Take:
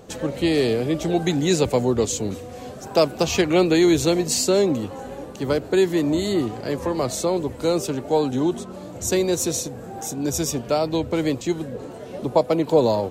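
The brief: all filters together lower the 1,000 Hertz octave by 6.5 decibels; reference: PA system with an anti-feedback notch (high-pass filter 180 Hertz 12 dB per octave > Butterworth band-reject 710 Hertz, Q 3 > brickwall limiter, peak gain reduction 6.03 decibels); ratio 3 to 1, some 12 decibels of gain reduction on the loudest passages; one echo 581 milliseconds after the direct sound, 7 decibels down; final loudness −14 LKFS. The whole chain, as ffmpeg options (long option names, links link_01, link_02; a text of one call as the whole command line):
ffmpeg -i in.wav -af "equalizer=frequency=1000:width_type=o:gain=-3.5,acompressor=threshold=-30dB:ratio=3,highpass=180,asuperstop=centerf=710:order=8:qfactor=3,aecho=1:1:581:0.447,volume=18.5dB,alimiter=limit=-4dB:level=0:latency=1" out.wav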